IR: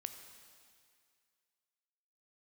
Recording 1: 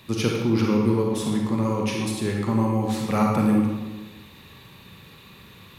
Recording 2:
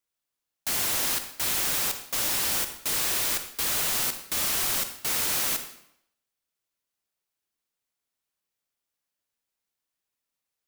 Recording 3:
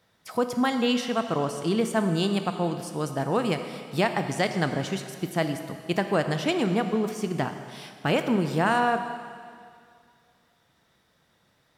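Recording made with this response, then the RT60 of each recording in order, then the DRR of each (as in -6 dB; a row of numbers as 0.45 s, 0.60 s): 3; 1.2 s, 0.75 s, 2.2 s; -1.0 dB, 8.0 dB, 7.0 dB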